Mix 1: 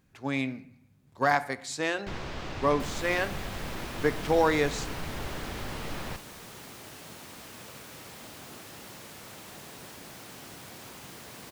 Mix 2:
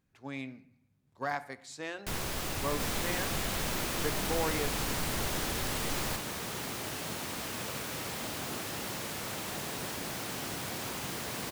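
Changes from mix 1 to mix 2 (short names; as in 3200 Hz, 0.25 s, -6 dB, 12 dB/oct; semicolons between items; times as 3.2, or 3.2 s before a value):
speech -10.0 dB; first sound: remove air absorption 170 m; second sound +8.0 dB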